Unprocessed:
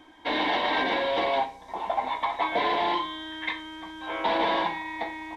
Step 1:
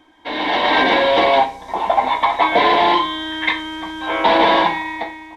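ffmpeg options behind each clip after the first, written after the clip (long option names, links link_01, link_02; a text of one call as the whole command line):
ffmpeg -i in.wav -af "dynaudnorm=framelen=120:gausssize=9:maxgain=13dB" out.wav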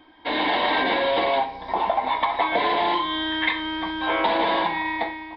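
ffmpeg -i in.wav -af "acompressor=threshold=-19dB:ratio=6,aresample=11025,aresample=44100" out.wav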